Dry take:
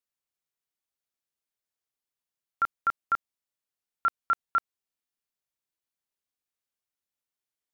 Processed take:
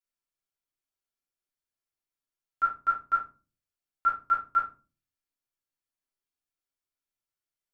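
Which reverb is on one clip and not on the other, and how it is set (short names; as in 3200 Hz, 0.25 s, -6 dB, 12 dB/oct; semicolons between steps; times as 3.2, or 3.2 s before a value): shoebox room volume 160 m³, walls furnished, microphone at 3.1 m; gain -9.5 dB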